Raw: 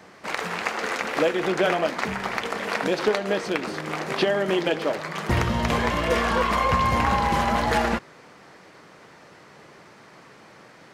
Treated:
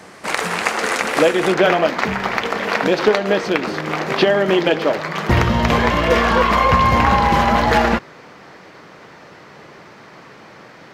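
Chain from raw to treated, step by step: bell 9300 Hz +7.5 dB 0.81 oct, from 1.54 s -9.5 dB; gain +7.5 dB

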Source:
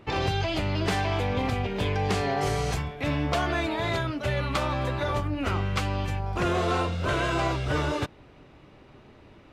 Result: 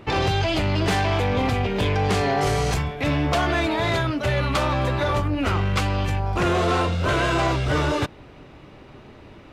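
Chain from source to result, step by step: soft clip -21.5 dBFS, distortion -17 dB; gain +7 dB

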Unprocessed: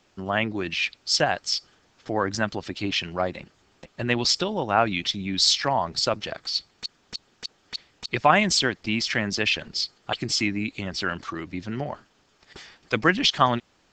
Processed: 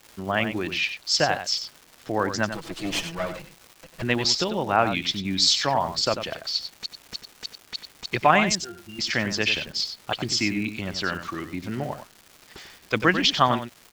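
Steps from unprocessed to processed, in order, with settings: 2.5–4.02 minimum comb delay 6.1 ms; 8.55–8.99 octave resonator F, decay 0.21 s; echo 94 ms -9.5 dB; crackle 500/s -37 dBFS

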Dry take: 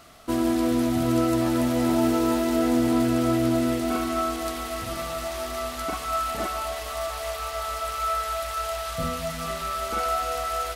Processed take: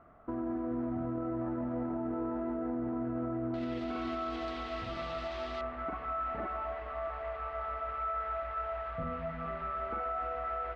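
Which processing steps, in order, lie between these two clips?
LPF 1500 Hz 24 dB/oct, from 3.54 s 4000 Hz, from 5.61 s 2000 Hz; limiter -21.5 dBFS, peak gain reduction 10.5 dB; gain -6.5 dB

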